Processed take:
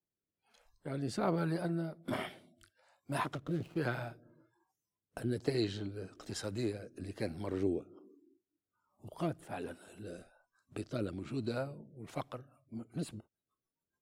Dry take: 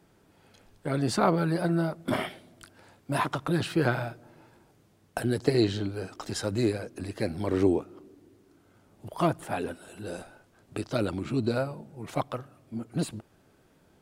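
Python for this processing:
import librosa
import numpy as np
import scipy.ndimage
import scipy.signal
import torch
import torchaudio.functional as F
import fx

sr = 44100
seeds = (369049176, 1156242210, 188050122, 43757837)

y = fx.median_filter(x, sr, points=25, at=(3.35, 3.78))
y = fx.rotary_switch(y, sr, hz=1.2, then_hz=7.0, switch_at_s=12.07)
y = fx.noise_reduce_blind(y, sr, reduce_db=25)
y = y * librosa.db_to_amplitude(-7.0)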